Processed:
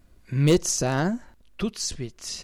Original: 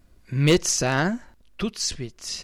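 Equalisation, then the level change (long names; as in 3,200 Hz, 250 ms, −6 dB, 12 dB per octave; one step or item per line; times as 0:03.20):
parametric band 5,100 Hz −2 dB 0.32 octaves
dynamic equaliser 2,200 Hz, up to −8 dB, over −39 dBFS, Q 0.72
0.0 dB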